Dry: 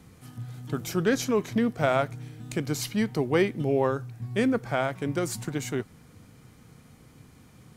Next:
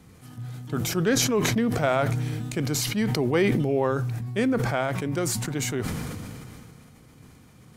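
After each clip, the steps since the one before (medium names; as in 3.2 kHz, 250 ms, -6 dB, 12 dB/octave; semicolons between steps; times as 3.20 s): decay stretcher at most 22 dB/s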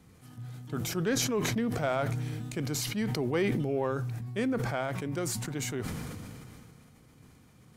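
saturation -8.5 dBFS, distortion -30 dB; trim -6 dB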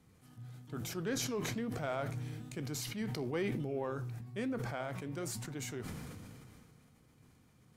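flange 1.1 Hz, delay 7.3 ms, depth 8.6 ms, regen -80%; trim -3 dB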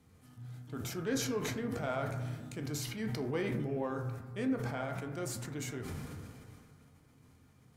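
reverberation RT60 1.3 s, pre-delay 5 ms, DRR 4 dB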